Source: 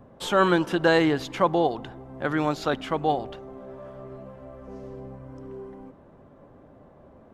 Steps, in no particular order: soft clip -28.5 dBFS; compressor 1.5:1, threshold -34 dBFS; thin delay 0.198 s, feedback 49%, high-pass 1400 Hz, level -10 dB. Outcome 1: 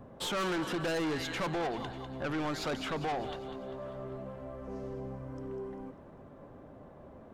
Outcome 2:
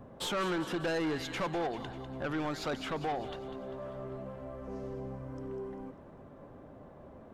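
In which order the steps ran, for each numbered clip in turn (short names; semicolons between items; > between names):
thin delay > soft clip > compressor; compressor > thin delay > soft clip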